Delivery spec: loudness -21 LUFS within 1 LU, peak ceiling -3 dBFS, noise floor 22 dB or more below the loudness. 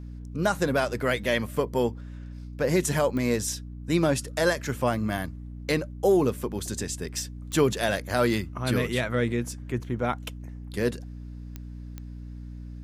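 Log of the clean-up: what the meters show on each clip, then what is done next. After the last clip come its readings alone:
clicks 4; hum 60 Hz; harmonics up to 300 Hz; hum level -36 dBFS; loudness -27.0 LUFS; peak -10.0 dBFS; loudness target -21.0 LUFS
-> de-click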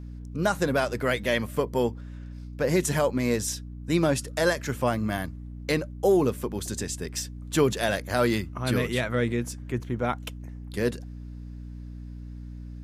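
clicks 0; hum 60 Hz; harmonics up to 300 Hz; hum level -36 dBFS
-> de-hum 60 Hz, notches 5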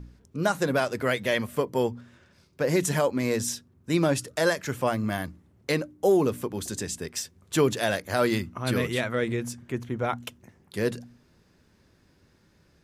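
hum none; loudness -27.5 LUFS; peak -10.5 dBFS; loudness target -21.0 LUFS
-> gain +6.5 dB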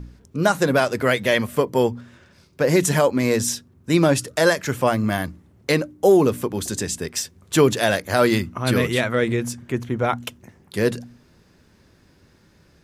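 loudness -21.0 LUFS; peak -4.0 dBFS; noise floor -56 dBFS

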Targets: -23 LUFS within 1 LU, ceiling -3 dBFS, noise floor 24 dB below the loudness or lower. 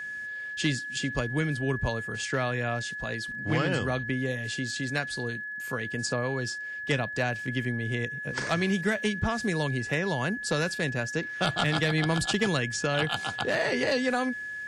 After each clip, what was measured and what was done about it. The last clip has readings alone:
ticks 26/s; steady tone 1700 Hz; tone level -34 dBFS; loudness -29.0 LUFS; peak -15.5 dBFS; loudness target -23.0 LUFS
-> de-click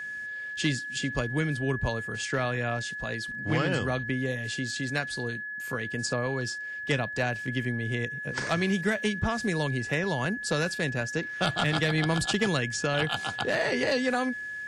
ticks 0/s; steady tone 1700 Hz; tone level -34 dBFS
-> notch 1700 Hz, Q 30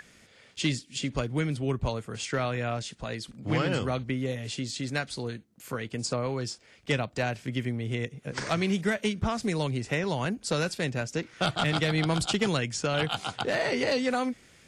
steady tone none; loudness -30.0 LUFS; peak -15.5 dBFS; loudness target -23.0 LUFS
-> gain +7 dB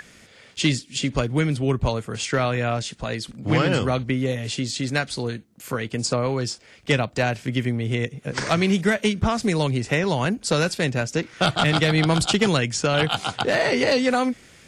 loudness -23.0 LUFS; peak -8.5 dBFS; noise floor -51 dBFS

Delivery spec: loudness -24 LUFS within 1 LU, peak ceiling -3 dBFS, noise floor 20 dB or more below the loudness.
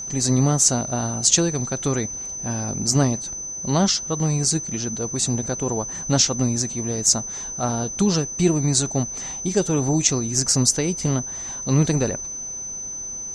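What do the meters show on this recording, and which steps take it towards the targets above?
steady tone 6100 Hz; tone level -29 dBFS; loudness -21.5 LUFS; peak -2.0 dBFS; loudness target -24.0 LUFS
-> notch 6100 Hz, Q 30; gain -2.5 dB

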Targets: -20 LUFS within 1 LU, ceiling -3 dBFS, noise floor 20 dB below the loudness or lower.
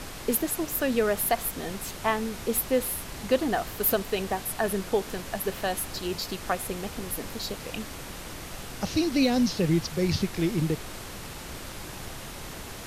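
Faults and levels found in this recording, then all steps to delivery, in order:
noise floor -40 dBFS; noise floor target -49 dBFS; loudness -28.5 LUFS; peak -10.0 dBFS; loudness target -20.0 LUFS
-> noise print and reduce 9 dB; gain +8.5 dB; limiter -3 dBFS

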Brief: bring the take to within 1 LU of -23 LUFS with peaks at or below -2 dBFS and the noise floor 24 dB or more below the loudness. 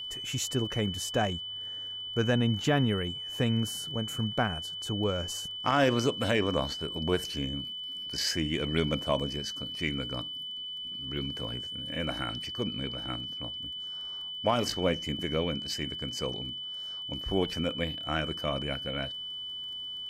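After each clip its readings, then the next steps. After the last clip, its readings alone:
ticks 20/s; steady tone 3000 Hz; tone level -36 dBFS; loudness -31.0 LUFS; peak -12.0 dBFS; loudness target -23.0 LUFS
-> de-click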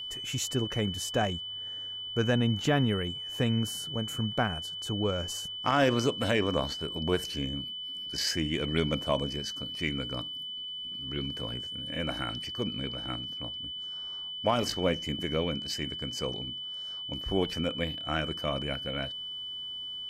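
ticks 0.050/s; steady tone 3000 Hz; tone level -36 dBFS
-> notch 3000 Hz, Q 30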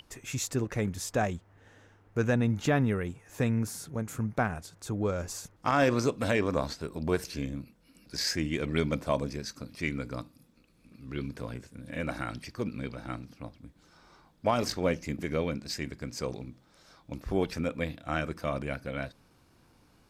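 steady tone none; loudness -32.0 LUFS; peak -12.5 dBFS; loudness target -23.0 LUFS
-> gain +9 dB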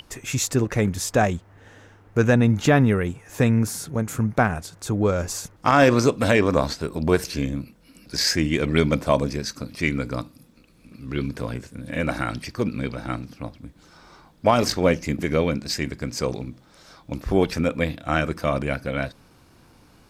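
loudness -23.0 LUFS; peak -3.5 dBFS; noise floor -55 dBFS

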